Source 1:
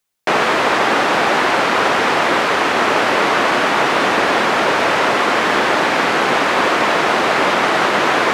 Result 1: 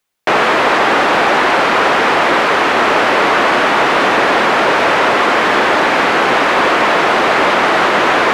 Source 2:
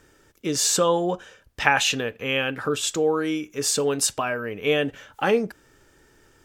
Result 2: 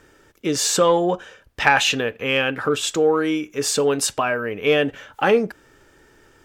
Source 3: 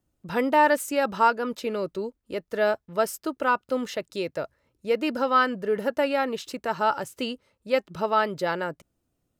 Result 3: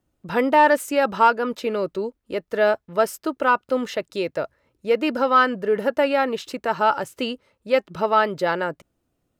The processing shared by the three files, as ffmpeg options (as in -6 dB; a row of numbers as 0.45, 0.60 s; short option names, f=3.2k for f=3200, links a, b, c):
-af "acontrast=65,bass=f=250:g=-3,treble=f=4k:g=-5,volume=-1.5dB"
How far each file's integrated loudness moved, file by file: +3.5, +3.5, +4.0 LU